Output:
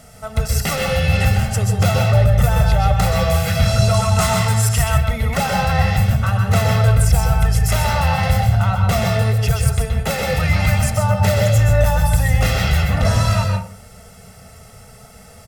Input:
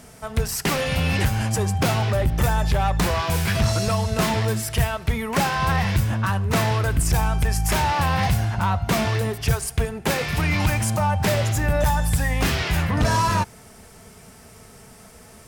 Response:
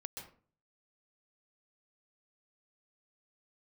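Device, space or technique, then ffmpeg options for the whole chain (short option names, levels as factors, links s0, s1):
microphone above a desk: -filter_complex "[0:a]aecho=1:1:1.5:0.81[s0];[1:a]atrim=start_sample=2205[s1];[s0][s1]afir=irnorm=-1:irlink=0,asettb=1/sr,asplit=3[s2][s3][s4];[s2]atrim=end=3.944[s5];[s3]atrim=start=3.94:end=4.98,asetpts=PTS-STARTPTS,afade=t=in:d=0.004:c=qsin,afade=t=out:st=1.036:d=0.004:c=qsin,equalizer=f=500:t=o:w=1:g=-7,equalizer=f=1000:t=o:w=1:g=8,equalizer=f=8000:t=o:w=1:g=8[s6];[s4]atrim=start=4.976[s7];[s5][s6]acrossfade=d=0.004:c1=hsin:c2=qsin[s8];[s8][s7]acrossfade=d=0.004:c1=qsin:c2=hsin,volume=1.58"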